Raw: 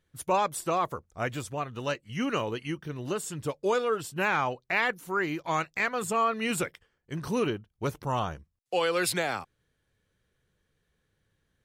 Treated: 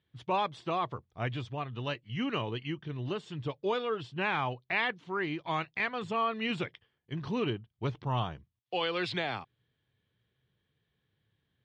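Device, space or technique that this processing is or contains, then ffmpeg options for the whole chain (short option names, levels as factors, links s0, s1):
guitar cabinet: -af "highpass=80,equalizer=f=120:t=q:w=4:g=8,equalizer=f=530:t=q:w=4:g=-5,equalizer=f=1400:t=q:w=4:g=-5,equalizer=f=3300:t=q:w=4:g=6,lowpass=f=4200:w=0.5412,lowpass=f=4200:w=1.3066,volume=0.708"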